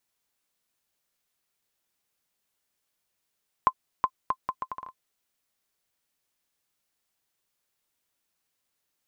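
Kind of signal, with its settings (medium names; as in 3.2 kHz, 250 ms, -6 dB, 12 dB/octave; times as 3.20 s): bouncing ball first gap 0.37 s, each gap 0.71, 1.04 kHz, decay 61 ms -8.5 dBFS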